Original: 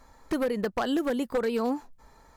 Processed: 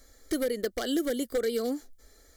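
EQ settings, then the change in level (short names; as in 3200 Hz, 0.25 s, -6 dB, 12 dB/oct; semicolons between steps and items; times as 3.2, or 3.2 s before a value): Butterworth band-stop 2600 Hz, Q 5.3; high shelf 4200 Hz +10.5 dB; fixed phaser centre 390 Hz, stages 4; 0.0 dB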